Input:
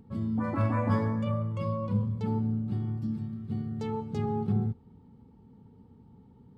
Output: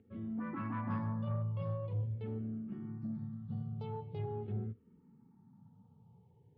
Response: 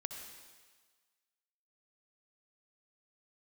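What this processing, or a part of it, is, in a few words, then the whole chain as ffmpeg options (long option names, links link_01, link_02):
barber-pole phaser into a guitar amplifier: -filter_complex "[0:a]asplit=2[link_01][link_02];[link_02]afreqshift=-0.44[link_03];[link_01][link_03]amix=inputs=2:normalize=1,asoftclip=type=tanh:threshold=-24dB,highpass=100,equalizer=frequency=110:width_type=q:width=4:gain=5,equalizer=frequency=160:width_type=q:width=4:gain=4,equalizer=frequency=270:width_type=q:width=4:gain=-3,lowpass=frequency=3500:width=0.5412,lowpass=frequency=3500:width=1.3066,volume=-6dB"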